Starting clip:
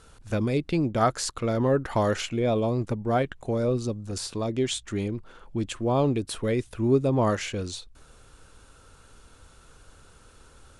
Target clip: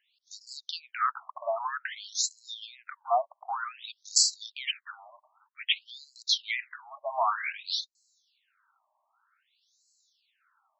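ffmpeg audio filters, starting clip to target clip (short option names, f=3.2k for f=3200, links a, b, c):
-filter_complex "[0:a]aemphasis=mode=production:type=cd,agate=range=-15dB:threshold=-39dB:ratio=16:detection=peak,asettb=1/sr,asplit=3[a][b][c];[a]atrim=end=5.594[d];[b]atrim=start=5.59:end=6.91,asetpts=PTS-STARTPTS,afade=t=in:d=0.004:c=qsin,afade=t=out:st=1.316:d=0.004:c=qsin,equalizer=f=125:t=o:w=1:g=9,equalizer=f=250:t=o:w=1:g=4,equalizer=f=500:t=o:w=1:g=7,equalizer=f=1k:t=o:w=1:g=-8,equalizer=f=2k:t=o:w=1:g=11,equalizer=f=4k:t=o:w=1:g=6[e];[c]atrim=start=6.906[f];[d][e]acrossfade=d=0.004:c1=hsin:c2=qsin[g];[g][f]acrossfade=d=0.004:c1=qsin:c2=hsin,alimiter=limit=-17dB:level=0:latency=1:release=14,asettb=1/sr,asplit=3[h][i][j];[h]atrim=end=3.354[k];[i]atrim=start=3.35:end=4.23,asetpts=PTS-STARTPTS,afade=t=in:d=0.004:c=qsin,afade=t=out:st=0.876:d=0.004:c=qsin,acontrast=39[l];[j]atrim=start=4.226[m];[k][l]acrossfade=d=0.004:c1=hsin:c2=qsin[n];[n][m]acrossfade=d=0.004:c1=qsin:c2=hsin,afftfilt=real='re*between(b*sr/1024,810*pow(5700/810,0.5+0.5*sin(2*PI*0.53*pts/sr))/1.41,810*pow(5700/810,0.5+0.5*sin(2*PI*0.53*pts/sr))*1.41)':imag='im*between(b*sr/1024,810*pow(5700/810,0.5+0.5*sin(2*PI*0.53*pts/sr))/1.41,810*pow(5700/810,0.5+0.5*sin(2*PI*0.53*pts/sr))*1.41)':win_size=1024:overlap=0.75,volume=5.5dB"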